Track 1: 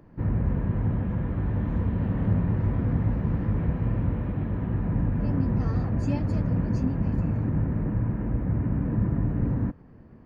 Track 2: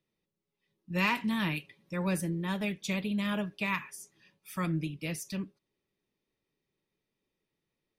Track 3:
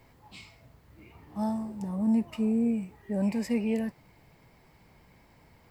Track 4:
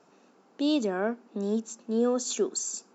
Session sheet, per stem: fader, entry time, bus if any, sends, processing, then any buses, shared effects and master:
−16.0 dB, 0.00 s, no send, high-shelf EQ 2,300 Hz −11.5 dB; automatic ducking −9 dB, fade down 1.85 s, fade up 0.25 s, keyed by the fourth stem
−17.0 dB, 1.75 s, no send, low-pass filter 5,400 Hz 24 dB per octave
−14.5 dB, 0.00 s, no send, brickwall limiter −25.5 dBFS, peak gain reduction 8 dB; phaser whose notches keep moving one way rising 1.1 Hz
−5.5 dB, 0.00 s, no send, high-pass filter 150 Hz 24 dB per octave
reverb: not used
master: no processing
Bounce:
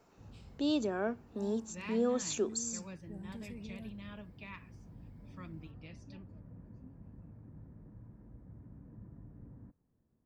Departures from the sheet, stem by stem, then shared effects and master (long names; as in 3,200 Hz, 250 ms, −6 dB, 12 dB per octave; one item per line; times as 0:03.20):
stem 1 −16.0 dB → −27.0 dB
stem 2: entry 1.75 s → 0.80 s
stem 4: missing high-pass filter 150 Hz 24 dB per octave